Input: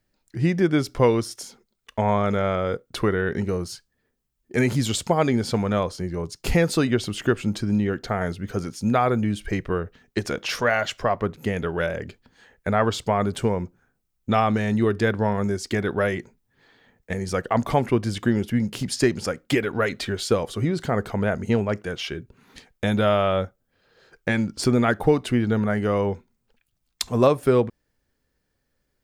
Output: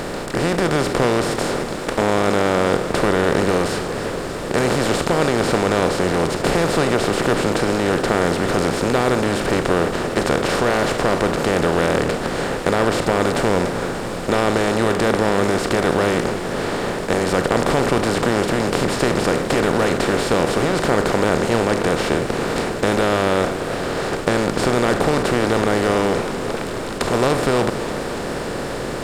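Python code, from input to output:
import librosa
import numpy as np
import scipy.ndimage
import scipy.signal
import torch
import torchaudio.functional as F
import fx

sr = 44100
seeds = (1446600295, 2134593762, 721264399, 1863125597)

y = fx.bin_compress(x, sr, power=0.2)
y = fx.echo_warbled(y, sr, ms=290, feedback_pct=79, rate_hz=2.8, cents=114, wet_db=-13.0)
y = F.gain(torch.from_numpy(y), -7.0).numpy()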